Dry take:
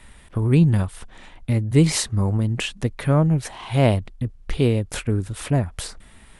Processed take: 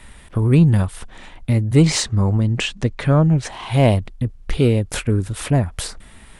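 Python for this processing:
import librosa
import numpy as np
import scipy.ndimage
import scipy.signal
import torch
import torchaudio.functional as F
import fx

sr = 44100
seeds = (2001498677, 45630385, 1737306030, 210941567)

p1 = fx.lowpass(x, sr, hz=8100.0, slope=24, at=(1.82, 3.52))
p2 = 10.0 ** (-15.5 / 20.0) * np.tanh(p1 / 10.0 ** (-15.5 / 20.0))
y = p1 + F.gain(torch.from_numpy(p2), -3.5).numpy()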